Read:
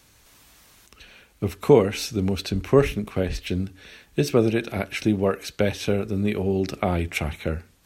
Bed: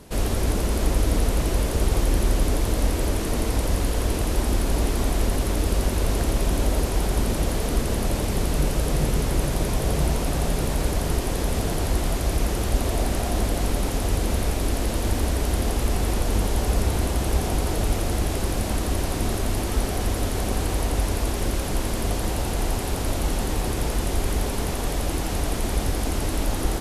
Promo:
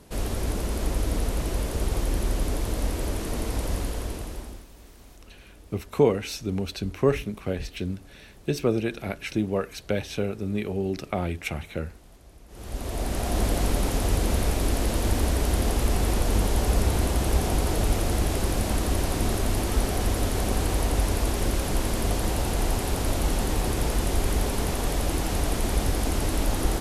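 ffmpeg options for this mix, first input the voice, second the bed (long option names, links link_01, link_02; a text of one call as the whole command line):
ffmpeg -i stem1.wav -i stem2.wav -filter_complex "[0:a]adelay=4300,volume=-4.5dB[link_01];[1:a]volume=22dB,afade=type=out:start_time=3.75:duration=0.92:silence=0.0749894,afade=type=in:start_time=12.48:duration=0.99:silence=0.0446684[link_02];[link_01][link_02]amix=inputs=2:normalize=0" out.wav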